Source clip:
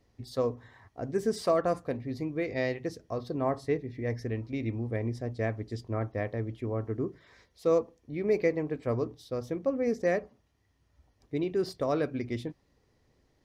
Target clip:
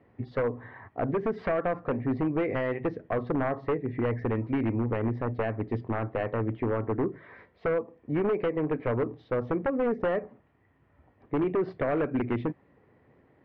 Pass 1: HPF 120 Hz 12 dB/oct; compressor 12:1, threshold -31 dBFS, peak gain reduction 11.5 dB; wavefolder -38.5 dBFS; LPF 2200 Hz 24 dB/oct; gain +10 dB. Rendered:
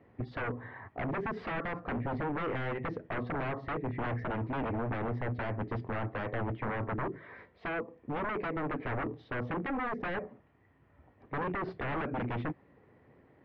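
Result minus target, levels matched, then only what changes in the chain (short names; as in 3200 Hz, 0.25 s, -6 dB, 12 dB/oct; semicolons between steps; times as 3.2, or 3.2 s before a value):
wavefolder: distortion +17 dB
change: wavefolder -30.5 dBFS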